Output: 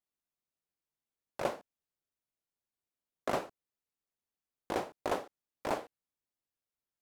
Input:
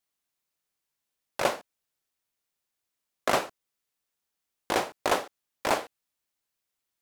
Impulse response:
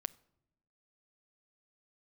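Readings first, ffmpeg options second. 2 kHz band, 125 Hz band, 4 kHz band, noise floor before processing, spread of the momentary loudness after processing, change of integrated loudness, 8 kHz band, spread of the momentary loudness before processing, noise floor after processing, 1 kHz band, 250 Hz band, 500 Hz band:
-11.5 dB, -4.0 dB, -13.5 dB, -85 dBFS, 14 LU, -8.5 dB, -14.0 dB, 14 LU, under -85 dBFS, -8.5 dB, -5.0 dB, -6.5 dB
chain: -af "tiltshelf=f=970:g=5,volume=-9dB"

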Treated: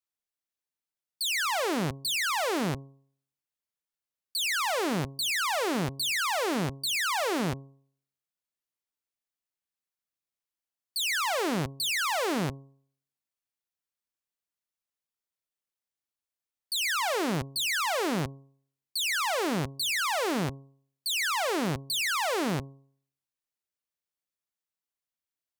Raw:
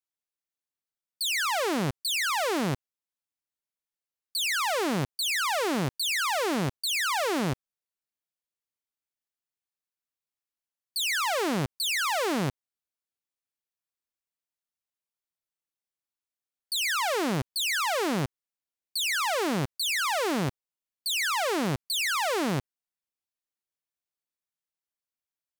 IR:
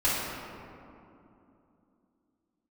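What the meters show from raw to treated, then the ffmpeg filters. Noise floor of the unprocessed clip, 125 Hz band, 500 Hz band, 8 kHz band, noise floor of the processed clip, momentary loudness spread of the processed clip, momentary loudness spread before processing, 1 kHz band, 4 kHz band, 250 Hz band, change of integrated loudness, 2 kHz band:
under -85 dBFS, -1.5 dB, -1.0 dB, -1.0 dB, under -85 dBFS, 7 LU, 6 LU, -1.0 dB, -1.0 dB, -1.0 dB, -1.0 dB, -1.0 dB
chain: -af "bandreject=f=136.7:t=h:w=4,bandreject=f=273.4:t=h:w=4,bandreject=f=410.1:t=h:w=4,bandreject=f=546.8:t=h:w=4,bandreject=f=683.5:t=h:w=4,bandreject=f=820.2:t=h:w=4,bandreject=f=956.9:t=h:w=4,bandreject=f=1.0936k:t=h:w=4,volume=-1dB"

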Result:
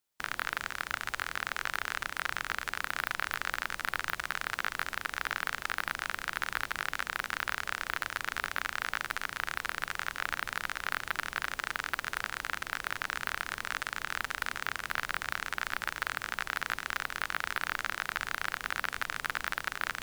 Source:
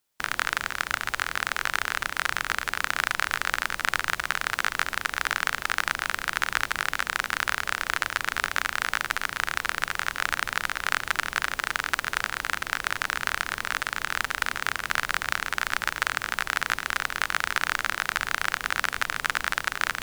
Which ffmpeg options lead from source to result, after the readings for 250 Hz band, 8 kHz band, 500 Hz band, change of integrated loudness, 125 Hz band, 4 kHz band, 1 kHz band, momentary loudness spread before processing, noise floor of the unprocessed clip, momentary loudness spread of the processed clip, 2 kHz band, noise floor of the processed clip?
-6.0 dB, -9.5 dB, -6.5 dB, -7.0 dB, -6.5 dB, -8.0 dB, -7.0 dB, 2 LU, -44 dBFS, 2 LU, -7.0 dB, -51 dBFS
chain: -af "aeval=exprs='0.398*(abs(mod(val(0)/0.398+3,4)-2)-1)':c=same,volume=-6.5dB"

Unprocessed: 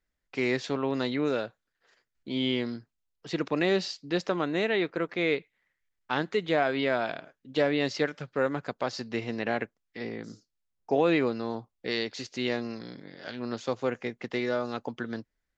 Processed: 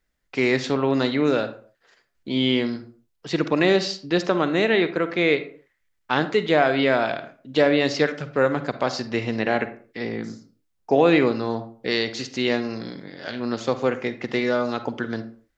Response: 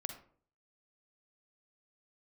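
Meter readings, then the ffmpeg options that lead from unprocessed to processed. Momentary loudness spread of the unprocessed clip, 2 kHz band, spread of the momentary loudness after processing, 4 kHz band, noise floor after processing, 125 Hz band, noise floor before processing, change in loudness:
13 LU, +7.0 dB, 13 LU, +7.0 dB, -72 dBFS, +7.5 dB, -82 dBFS, +7.0 dB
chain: -filter_complex "[0:a]asplit=2[a][b];[1:a]atrim=start_sample=2205,afade=t=out:st=0.34:d=0.01,atrim=end_sample=15435[c];[b][c]afir=irnorm=-1:irlink=0,volume=4dB[d];[a][d]amix=inputs=2:normalize=0"

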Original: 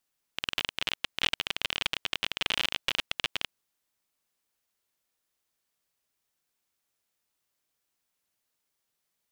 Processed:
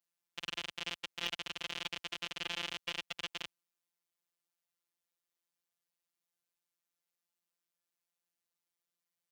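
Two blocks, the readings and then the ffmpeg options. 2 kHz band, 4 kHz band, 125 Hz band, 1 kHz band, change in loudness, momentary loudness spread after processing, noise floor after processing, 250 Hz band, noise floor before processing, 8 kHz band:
-9.0 dB, -9.5 dB, -7.0 dB, -7.5 dB, -9.0 dB, 6 LU, under -85 dBFS, -6.0 dB, -82 dBFS, -7.0 dB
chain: -af "afftfilt=real='hypot(re,im)*cos(PI*b)':imag='0':win_size=1024:overlap=0.75,highpass=58,aeval=exprs='0.376*(cos(1*acos(clip(val(0)/0.376,-1,1)))-cos(1*PI/2))+0.0299*(cos(4*acos(clip(val(0)/0.376,-1,1)))-cos(4*PI/2))+0.0335*(cos(6*acos(clip(val(0)/0.376,-1,1)))-cos(6*PI/2))':c=same,volume=-6.5dB"

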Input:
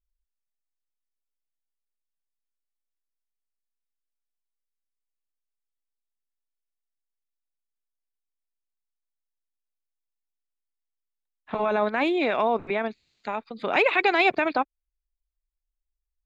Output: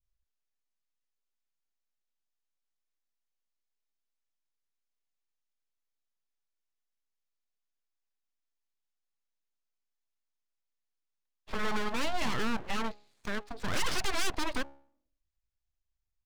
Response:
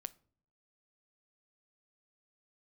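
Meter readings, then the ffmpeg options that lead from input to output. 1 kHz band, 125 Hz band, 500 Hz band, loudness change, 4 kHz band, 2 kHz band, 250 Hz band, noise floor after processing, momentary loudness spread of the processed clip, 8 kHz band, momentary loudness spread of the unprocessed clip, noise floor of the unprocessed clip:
-11.0 dB, +2.5 dB, -14.5 dB, -10.0 dB, -2.0 dB, -10.0 dB, -8.0 dB, -84 dBFS, 8 LU, n/a, 14 LU, -84 dBFS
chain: -af "adynamicequalizer=threshold=0.0282:dfrequency=1400:dqfactor=0.83:tfrequency=1400:tqfactor=0.83:attack=5:release=100:ratio=0.375:range=1.5:mode=cutabove:tftype=bell,aresample=16000,asoftclip=type=tanh:threshold=-22dB,aresample=44100,bandreject=f=69.19:t=h:w=4,bandreject=f=138.38:t=h:w=4,bandreject=f=207.57:t=h:w=4,bandreject=f=276.76:t=h:w=4,bandreject=f=345.95:t=h:w=4,bandreject=f=415.14:t=h:w=4,bandreject=f=484.33:t=h:w=4,bandreject=f=553.52:t=h:w=4,bandreject=f=622.71:t=h:w=4,aeval=exprs='abs(val(0))':c=same"

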